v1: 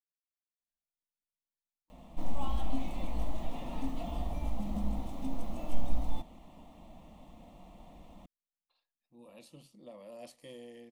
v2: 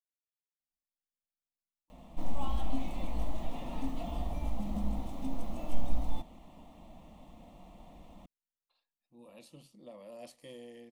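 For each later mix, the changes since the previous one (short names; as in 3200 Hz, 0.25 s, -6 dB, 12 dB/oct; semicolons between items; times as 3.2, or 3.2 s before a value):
none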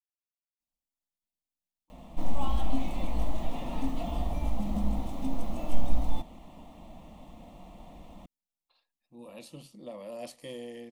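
speech +7.5 dB; background +4.5 dB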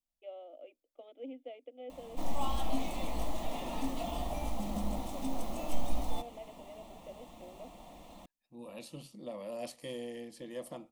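first voice: unmuted; second voice: entry -0.60 s; background: add tone controls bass -8 dB, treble +6 dB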